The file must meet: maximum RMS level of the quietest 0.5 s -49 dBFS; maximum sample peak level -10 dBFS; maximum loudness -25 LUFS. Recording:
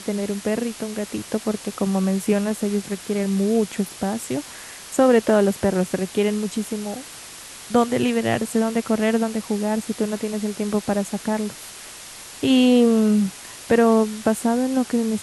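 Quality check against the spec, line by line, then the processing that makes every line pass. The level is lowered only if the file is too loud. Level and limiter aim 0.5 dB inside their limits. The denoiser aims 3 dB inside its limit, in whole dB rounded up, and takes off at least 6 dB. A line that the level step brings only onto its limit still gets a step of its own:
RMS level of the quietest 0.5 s -39 dBFS: fail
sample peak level -6.0 dBFS: fail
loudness -21.5 LUFS: fail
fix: denoiser 9 dB, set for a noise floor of -39 dBFS; gain -4 dB; limiter -10.5 dBFS

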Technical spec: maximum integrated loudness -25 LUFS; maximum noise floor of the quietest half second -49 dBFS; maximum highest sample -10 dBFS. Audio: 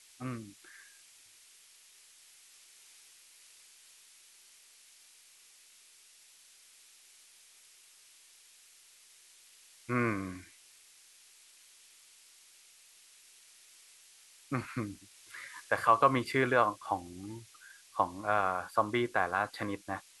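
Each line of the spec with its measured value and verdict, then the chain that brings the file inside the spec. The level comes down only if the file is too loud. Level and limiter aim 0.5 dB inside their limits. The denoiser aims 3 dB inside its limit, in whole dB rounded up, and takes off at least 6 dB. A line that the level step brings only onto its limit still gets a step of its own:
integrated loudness -32.0 LUFS: OK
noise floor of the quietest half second -60 dBFS: OK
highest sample -11.0 dBFS: OK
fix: none

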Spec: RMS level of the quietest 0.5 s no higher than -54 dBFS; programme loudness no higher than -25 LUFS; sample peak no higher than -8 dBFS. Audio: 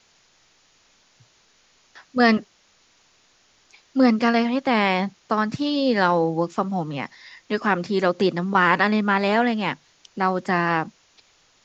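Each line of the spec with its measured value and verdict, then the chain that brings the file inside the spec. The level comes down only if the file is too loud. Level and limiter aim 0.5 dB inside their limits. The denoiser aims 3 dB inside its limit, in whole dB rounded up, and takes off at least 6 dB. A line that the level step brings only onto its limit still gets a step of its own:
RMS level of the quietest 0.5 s -60 dBFS: OK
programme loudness -21.5 LUFS: fail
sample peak -3.0 dBFS: fail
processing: gain -4 dB; limiter -8.5 dBFS

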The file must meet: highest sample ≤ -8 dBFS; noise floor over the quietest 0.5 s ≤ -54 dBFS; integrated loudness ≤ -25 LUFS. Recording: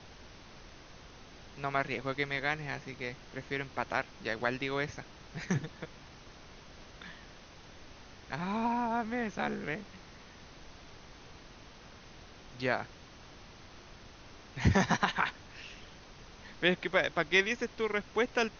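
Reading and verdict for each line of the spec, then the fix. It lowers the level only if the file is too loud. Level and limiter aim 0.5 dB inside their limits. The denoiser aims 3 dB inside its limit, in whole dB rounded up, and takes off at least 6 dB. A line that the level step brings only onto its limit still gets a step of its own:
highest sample -11.5 dBFS: OK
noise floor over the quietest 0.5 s -52 dBFS: fail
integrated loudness -33.0 LUFS: OK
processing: denoiser 6 dB, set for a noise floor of -52 dBFS

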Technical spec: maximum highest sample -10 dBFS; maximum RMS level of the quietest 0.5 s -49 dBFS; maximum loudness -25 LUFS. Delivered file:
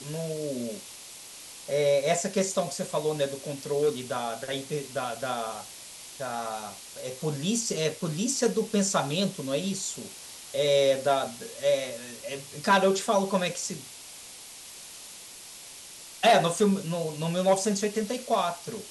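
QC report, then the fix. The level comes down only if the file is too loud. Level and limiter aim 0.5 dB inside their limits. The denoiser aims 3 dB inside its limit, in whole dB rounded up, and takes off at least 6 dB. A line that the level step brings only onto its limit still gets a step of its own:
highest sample -11.0 dBFS: OK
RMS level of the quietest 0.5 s -45 dBFS: fail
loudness -28.0 LUFS: OK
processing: denoiser 7 dB, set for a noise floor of -45 dBFS

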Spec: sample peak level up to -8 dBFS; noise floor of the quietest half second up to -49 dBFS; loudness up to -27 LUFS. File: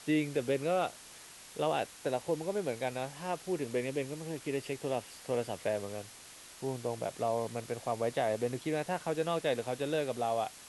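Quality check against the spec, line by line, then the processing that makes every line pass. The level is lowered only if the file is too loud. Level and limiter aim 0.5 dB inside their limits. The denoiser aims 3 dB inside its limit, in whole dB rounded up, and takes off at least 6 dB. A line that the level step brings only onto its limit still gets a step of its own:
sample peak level -18.5 dBFS: OK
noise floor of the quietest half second -52 dBFS: OK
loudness -35.0 LUFS: OK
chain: none

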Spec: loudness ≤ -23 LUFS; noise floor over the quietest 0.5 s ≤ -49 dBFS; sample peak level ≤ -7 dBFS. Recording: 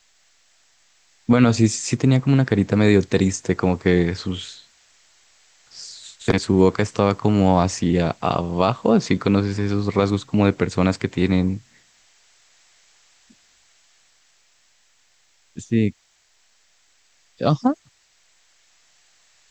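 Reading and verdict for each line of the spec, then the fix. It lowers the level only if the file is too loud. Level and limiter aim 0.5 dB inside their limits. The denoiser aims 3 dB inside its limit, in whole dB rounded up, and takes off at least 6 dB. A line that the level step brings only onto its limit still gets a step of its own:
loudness -20.0 LUFS: fail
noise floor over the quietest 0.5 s -61 dBFS: OK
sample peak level -4.0 dBFS: fail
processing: gain -3.5 dB

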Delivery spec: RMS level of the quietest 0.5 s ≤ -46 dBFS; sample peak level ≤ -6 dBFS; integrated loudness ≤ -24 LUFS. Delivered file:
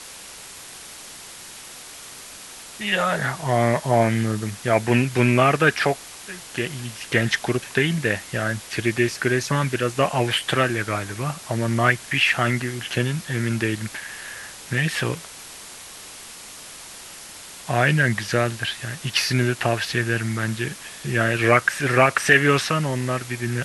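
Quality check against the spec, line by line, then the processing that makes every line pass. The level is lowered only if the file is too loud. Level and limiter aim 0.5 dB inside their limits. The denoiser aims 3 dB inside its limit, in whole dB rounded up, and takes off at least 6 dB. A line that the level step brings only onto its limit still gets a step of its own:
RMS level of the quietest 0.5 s -40 dBFS: fail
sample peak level -3.0 dBFS: fail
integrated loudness -22.0 LUFS: fail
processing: denoiser 7 dB, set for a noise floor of -40 dBFS; gain -2.5 dB; limiter -6.5 dBFS

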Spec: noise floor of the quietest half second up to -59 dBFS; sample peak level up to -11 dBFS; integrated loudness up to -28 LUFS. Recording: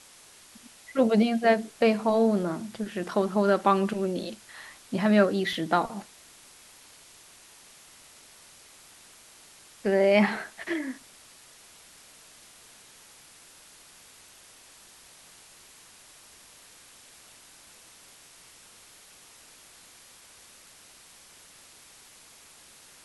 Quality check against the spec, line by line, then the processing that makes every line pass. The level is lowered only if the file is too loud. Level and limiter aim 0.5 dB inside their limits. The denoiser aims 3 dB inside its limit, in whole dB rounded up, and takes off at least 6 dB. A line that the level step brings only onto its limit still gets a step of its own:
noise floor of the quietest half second -53 dBFS: fail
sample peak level -9.0 dBFS: fail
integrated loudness -25.5 LUFS: fail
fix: denoiser 6 dB, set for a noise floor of -53 dBFS; gain -3 dB

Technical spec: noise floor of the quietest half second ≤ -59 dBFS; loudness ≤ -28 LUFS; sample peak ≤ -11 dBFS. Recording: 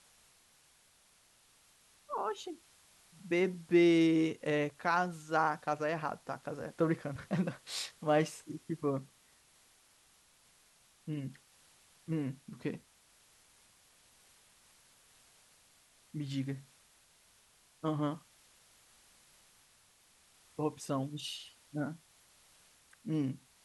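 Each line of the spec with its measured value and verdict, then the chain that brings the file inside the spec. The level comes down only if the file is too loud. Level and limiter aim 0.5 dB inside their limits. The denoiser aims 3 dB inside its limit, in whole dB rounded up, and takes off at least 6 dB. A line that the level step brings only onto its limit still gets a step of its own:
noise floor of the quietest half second -67 dBFS: OK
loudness -35.0 LUFS: OK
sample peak -16.5 dBFS: OK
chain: none

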